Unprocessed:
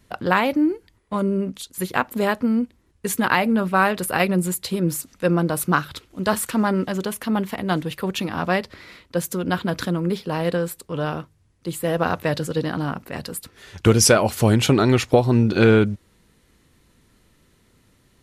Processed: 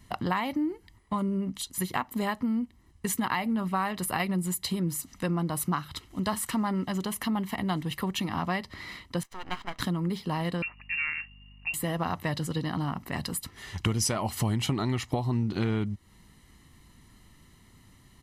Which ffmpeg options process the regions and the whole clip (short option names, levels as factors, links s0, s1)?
-filter_complex "[0:a]asettb=1/sr,asplit=3[s0][s1][s2];[s0]atrim=end=9.234[s3];[s1]atrim=start=9.23:end=9.8,asetpts=PTS-STARTPTS,afade=t=in:d=0.004:c=qsin,afade=t=out:st=0.566:d=0.004:c=qsin,highpass=720,lowpass=2700,aeval=exprs='max(val(0),0)':c=same[s4];[s2]atrim=start=9.796[s5];[s3][s4]acrossfade=d=0.004:c1=hsin:c2=qsin[s6];[s6][s5]acrossfade=d=0.004:c1=qsin:c2=hsin,asettb=1/sr,asplit=3[s7][s8][s9];[s7]atrim=end=10.624[s10];[s8]atrim=start=10.62:end=11.74,asetpts=PTS-STARTPTS,afade=t=in:d=0.004:c=qsin,afade=t=out:st=1.116:d=0.004:c=qsin,lowpass=f=2500:t=q:w=0.5098,lowpass=f=2500:t=q:w=0.6013,lowpass=f=2500:t=q:w=0.9,lowpass=f=2500:t=q:w=2.563,afreqshift=-2900,aeval=exprs='val(0)+0.00178*(sin(2*PI*50*n/s)+sin(2*PI*2*50*n/s)/2+sin(2*PI*3*50*n/s)/3+sin(2*PI*4*50*n/s)/4+sin(2*PI*5*50*n/s)/5)':c=same[s11];[s9]atrim=start=11.736[s12];[s10][s11]acrossfade=d=0.004:c1=hsin:c2=qsin[s13];[s13][s12]acrossfade=d=0.004:c1=qsin:c2=hsin,aecho=1:1:1:0.58,acompressor=threshold=0.0355:ratio=3"